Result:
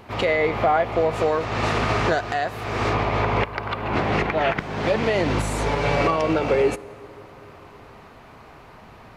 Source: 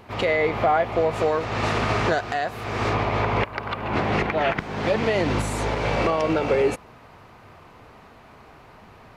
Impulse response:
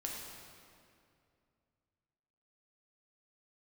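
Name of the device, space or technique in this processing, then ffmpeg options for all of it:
ducked reverb: -filter_complex "[0:a]asettb=1/sr,asplit=3[s0][s1][s2];[s0]atrim=end=5.664[s3];[s1]atrim=start=5.66:end=6.16,asetpts=PTS-STARTPTS,afade=t=in:d=0.004:c=qsin,afade=t=out:st=0.496:d=0.004:c=qsin,aecho=1:1:7:0.55,atrim=end_sample=22050[s4];[s2]atrim=start=6.156[s5];[s3][s4]acrossfade=d=0.004:c1=hsin:c2=qsin[s6];[s6][s5]acrossfade=d=0.004:c1=qsin:c2=hsin,asplit=3[s7][s8][s9];[1:a]atrim=start_sample=2205[s10];[s8][s10]afir=irnorm=-1:irlink=0[s11];[s9]apad=whole_len=404143[s12];[s11][s12]sidechaincompress=threshold=0.0562:ratio=8:attack=16:release=1250,volume=0.398[s13];[s7][s13]amix=inputs=2:normalize=0"

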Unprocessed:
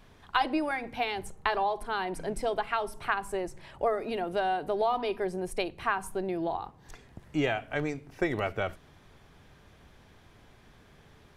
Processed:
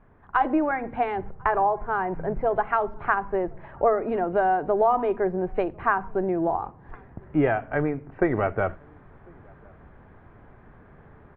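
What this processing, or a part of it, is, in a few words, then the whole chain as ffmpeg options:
action camera in a waterproof case: -filter_complex "[0:a]asettb=1/sr,asplit=3[s0][s1][s2];[s0]atrim=end=1.354[s3];[s1]atrim=start=1.35:end=2.59,asetpts=PTS-STARTPTS,afade=t=in:d=0.004:c=qsin,afade=t=out:st=1.236:d=0.004:c=qsin,equalizer=f=125:t=o:w=1:g=8,equalizer=f=250:t=o:w=1:g=-6,equalizer=f=4000:t=o:w=1:g=-9,equalizer=f=8000:t=o:w=1:g=6[s4];[s2]atrim=start=2.586[s5];[s3][s4]acrossfade=d=0.004:c1=hsin:c2=qsin[s6];[s6][s5]acrossfade=d=0.004:c1=qsin:c2=hsin,lowpass=f=1700:w=0.5412,lowpass=f=1700:w=1.3066,asplit=2[s7][s8];[s8]adelay=1050,volume=0.0355,highshelf=f=4000:g=-23.6[s9];[s7][s9]amix=inputs=2:normalize=0,dynaudnorm=f=230:g=3:m=2.24" -ar 24000 -c:a aac -b:a 48k

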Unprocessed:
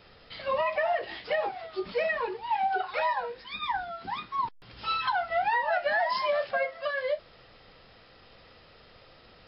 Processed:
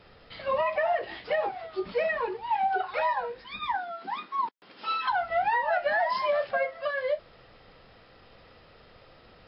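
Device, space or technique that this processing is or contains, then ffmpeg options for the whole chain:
behind a face mask: -filter_complex "[0:a]highshelf=f=3400:g=-8,asettb=1/sr,asplit=3[s0][s1][s2];[s0]atrim=end=3.754[s3];[s1]atrim=start=3.75:end=5.1,asetpts=PTS-STARTPTS,afade=t=in:d=0.004:c=qsin,afade=t=out:st=1.346:d=0.004:c=qsin,highpass=f=220:w=0.5412,highpass=f=220:w=1.3066[s4];[s2]atrim=start=5.096[s5];[s3][s4]acrossfade=d=0.004:c1=hsin:c2=qsin[s6];[s6][s5]acrossfade=d=0.004:c1=qsin:c2=hsin,volume=1.19"

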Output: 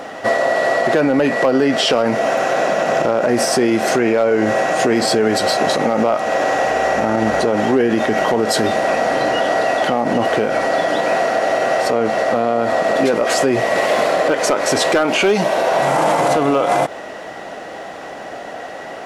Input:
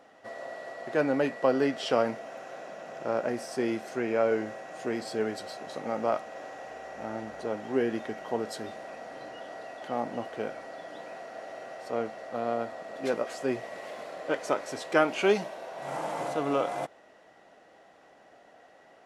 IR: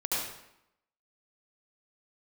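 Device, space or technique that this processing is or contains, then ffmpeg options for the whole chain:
loud club master: -af "acompressor=threshold=0.0251:ratio=2.5,asoftclip=type=hard:threshold=0.0631,alimiter=level_in=39.8:limit=0.891:release=50:level=0:latency=1,volume=0.501"

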